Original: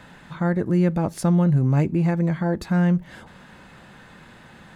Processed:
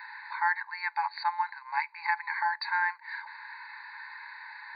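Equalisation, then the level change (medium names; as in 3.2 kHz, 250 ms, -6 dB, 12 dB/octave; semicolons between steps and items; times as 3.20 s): brick-wall FIR band-pass 830–4700 Hz; Butterworth band-stop 3.3 kHz, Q 2.2; static phaser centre 1.9 kHz, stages 8; +9.0 dB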